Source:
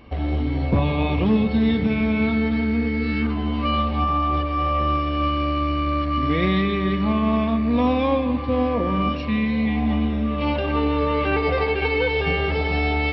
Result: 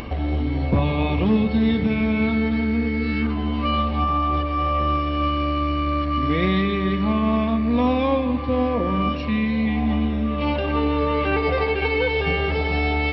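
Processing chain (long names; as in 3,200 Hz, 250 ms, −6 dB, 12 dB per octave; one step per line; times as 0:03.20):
upward compression, threshold −22 dBFS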